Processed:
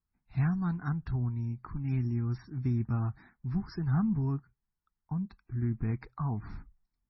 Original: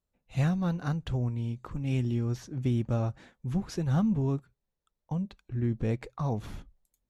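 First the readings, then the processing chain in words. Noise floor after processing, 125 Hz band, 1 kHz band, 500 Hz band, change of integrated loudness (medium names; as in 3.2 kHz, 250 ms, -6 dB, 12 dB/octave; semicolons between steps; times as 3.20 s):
under -85 dBFS, -1.0 dB, -3.0 dB, -10.5 dB, -2.0 dB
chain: static phaser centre 1.3 kHz, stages 4; MP3 16 kbps 24 kHz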